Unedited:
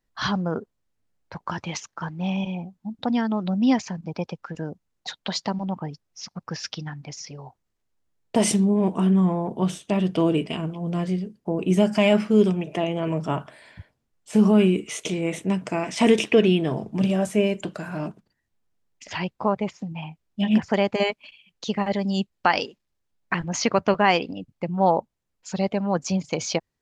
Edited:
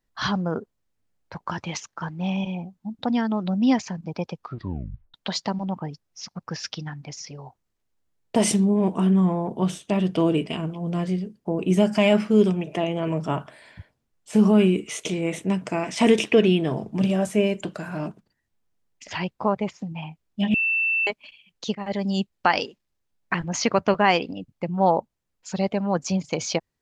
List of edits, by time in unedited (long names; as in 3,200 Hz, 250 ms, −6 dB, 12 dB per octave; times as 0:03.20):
0:04.36: tape stop 0.78 s
0:20.54–0:21.07: beep over 2,670 Hz −19.5 dBFS
0:21.75–0:22.13: fade in equal-power, from −15 dB